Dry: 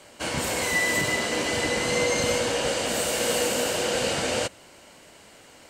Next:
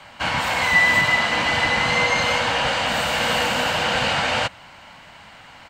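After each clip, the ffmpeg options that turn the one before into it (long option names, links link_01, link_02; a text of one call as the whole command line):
ffmpeg -i in.wav -filter_complex "[0:a]firequalizer=gain_entry='entry(160,0);entry(380,-15);entry(820,3);entry(3700,-2);entry(5600,-10);entry(10000,-19);entry(15000,-11)':delay=0.05:min_phase=1,acrossover=split=310|5900[link_01][link_02][link_03];[link_01]alimiter=level_in=7.5dB:limit=-24dB:level=0:latency=1:release=481,volume=-7.5dB[link_04];[link_04][link_02][link_03]amix=inputs=3:normalize=0,volume=8dB" out.wav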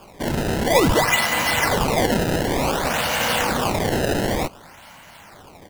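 ffmpeg -i in.wav -af "acrusher=samples=22:mix=1:aa=0.000001:lfo=1:lforange=35.2:lforate=0.55" out.wav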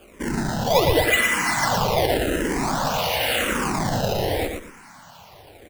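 ffmpeg -i in.wav -filter_complex "[0:a]aecho=1:1:116|232|348|464:0.562|0.157|0.0441|0.0123,asplit=2[link_01][link_02];[link_02]afreqshift=-0.89[link_03];[link_01][link_03]amix=inputs=2:normalize=1" out.wav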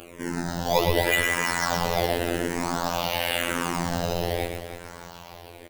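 ffmpeg -i in.wav -af "acompressor=mode=upward:threshold=-32dB:ratio=2.5,aecho=1:1:309|618|927|1236:0.282|0.113|0.0451|0.018,afftfilt=real='hypot(re,im)*cos(PI*b)':imag='0':win_size=2048:overlap=0.75,volume=-1dB" out.wav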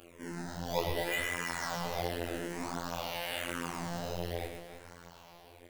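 ffmpeg -i in.wav -af "flanger=delay=22.5:depth=6.5:speed=1.4,volume=-8dB" out.wav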